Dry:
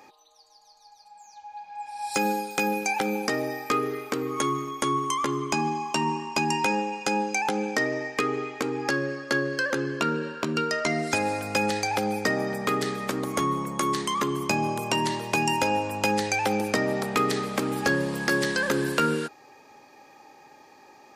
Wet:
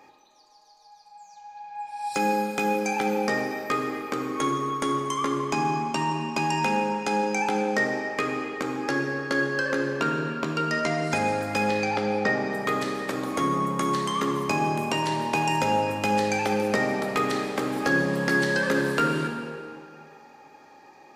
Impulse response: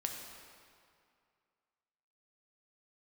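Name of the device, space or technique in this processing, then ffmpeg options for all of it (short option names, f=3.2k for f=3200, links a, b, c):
swimming-pool hall: -filter_complex "[0:a]asettb=1/sr,asplit=3[a][b][c];[a]atrim=end=11.684[d];[b]atrim=start=11.68:end=12.46,asetpts=PTS-STARTPTS,afade=t=in:d=0.004:c=qsin,afade=t=out:st=0.776:d=0.004:c=qsin,lowpass=5.1k[e];[c]atrim=start=12.456[f];[d][e]acrossfade=d=0.004:c1=hsin:c2=qsin[g];[g][f]acrossfade=d=0.004:c1=qsin:c2=hsin[h];[1:a]atrim=start_sample=2205[i];[h][i]afir=irnorm=-1:irlink=0,highshelf=f=4.5k:g=-6"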